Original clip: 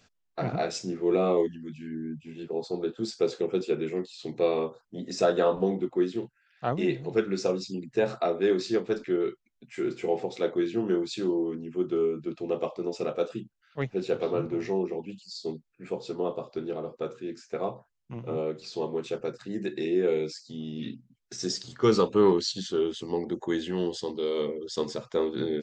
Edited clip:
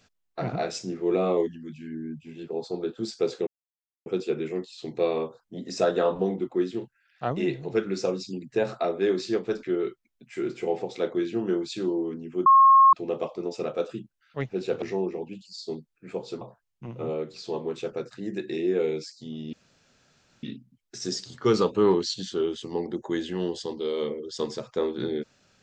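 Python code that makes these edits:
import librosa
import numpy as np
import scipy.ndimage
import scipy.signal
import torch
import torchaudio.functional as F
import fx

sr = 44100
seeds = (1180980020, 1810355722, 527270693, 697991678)

y = fx.edit(x, sr, fx.insert_silence(at_s=3.47, length_s=0.59),
    fx.bleep(start_s=11.87, length_s=0.47, hz=1080.0, db=-11.5),
    fx.cut(start_s=14.23, length_s=0.36),
    fx.cut(start_s=16.18, length_s=1.51),
    fx.insert_room_tone(at_s=20.81, length_s=0.9), tone=tone)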